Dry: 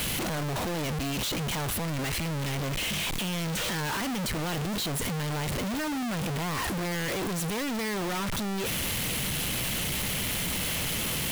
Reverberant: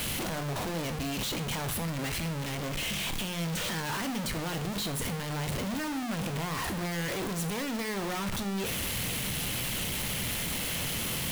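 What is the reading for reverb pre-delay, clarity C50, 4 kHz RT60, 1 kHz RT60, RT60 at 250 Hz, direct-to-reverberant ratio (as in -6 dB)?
7 ms, 14.0 dB, 0.45 s, 0.50 s, 0.45 s, 9.0 dB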